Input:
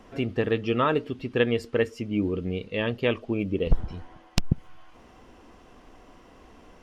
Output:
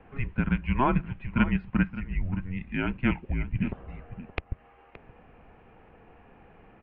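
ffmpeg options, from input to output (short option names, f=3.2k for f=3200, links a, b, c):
-filter_complex "[0:a]asplit=2[a][b];[b]adelay=571.4,volume=-13dB,highshelf=f=4k:g=-12.9[c];[a][c]amix=inputs=2:normalize=0,highpass=f=240:t=q:w=0.5412,highpass=f=240:t=q:w=1.307,lowpass=f=2.9k:t=q:w=0.5176,lowpass=f=2.9k:t=q:w=0.7071,lowpass=f=2.9k:t=q:w=1.932,afreqshift=-270"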